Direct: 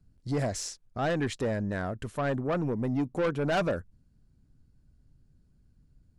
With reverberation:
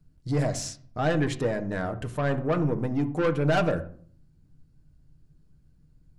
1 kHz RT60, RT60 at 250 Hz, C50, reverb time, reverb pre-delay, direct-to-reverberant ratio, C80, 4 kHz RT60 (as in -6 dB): 0.50 s, 0.75 s, 14.0 dB, 0.50 s, 6 ms, 5.0 dB, 18.0 dB, 0.40 s